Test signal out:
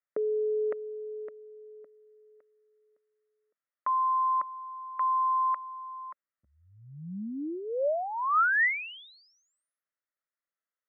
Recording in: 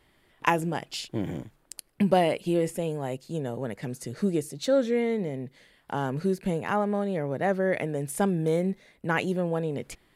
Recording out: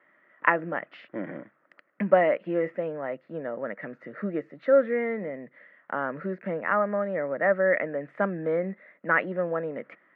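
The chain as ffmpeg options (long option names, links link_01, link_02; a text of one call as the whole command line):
ffmpeg -i in.wav -af "highpass=frequency=210:width=0.5412,highpass=frequency=210:width=1.3066,equalizer=frequency=250:width_type=q:width=4:gain=-4,equalizer=frequency=400:width_type=q:width=4:gain=-8,equalizer=frequency=580:width_type=q:width=4:gain=7,equalizer=frequency=830:width_type=q:width=4:gain=-6,equalizer=frequency=1300:width_type=q:width=4:gain=9,equalizer=frequency=1900:width_type=q:width=4:gain=10,lowpass=frequency=2000:width=0.5412,lowpass=frequency=2000:width=1.3066" out.wav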